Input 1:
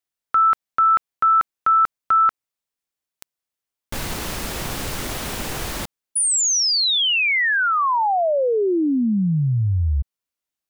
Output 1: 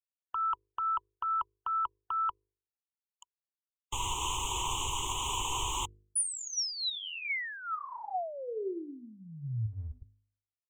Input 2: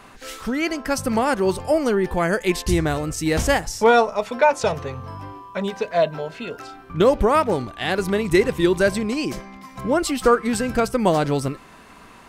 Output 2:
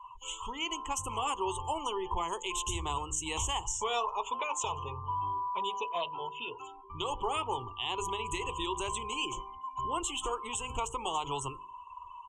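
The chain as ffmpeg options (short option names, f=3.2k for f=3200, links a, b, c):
-filter_complex "[0:a]acrossover=split=110|550|4000[a][b][c][d];[b]acompressor=threshold=-31dB:ratio=8:attack=51:release=109:knee=6[e];[a][e][c][d]amix=inputs=4:normalize=0,firequalizer=gain_entry='entry(100,0);entry(190,-18);entry(380,-1);entry(600,-16);entry(980,14);entry(1500,-21);entry(3000,11);entry(4600,-17);entry(6800,10);entry(9700,-3)':delay=0.05:min_phase=1,afftdn=nr=28:nf=-40,afftfilt=real='re*lt(hypot(re,im),0.891)':imag='im*lt(hypot(re,im),0.891)':win_size=1024:overlap=0.75,alimiter=limit=-16.5dB:level=0:latency=1:release=94,bandreject=f=50.91:t=h:w=4,bandreject=f=101.82:t=h:w=4,bandreject=f=152.73:t=h:w=4,bandreject=f=203.64:t=h:w=4,bandreject=f=254.55:t=h:w=4,bandreject=f=305.46:t=h:w=4,bandreject=f=356.37:t=h:w=4,bandreject=f=407.28:t=h:w=4,bandreject=f=458.19:t=h:w=4,bandreject=f=509.1:t=h:w=4,volume=-6dB"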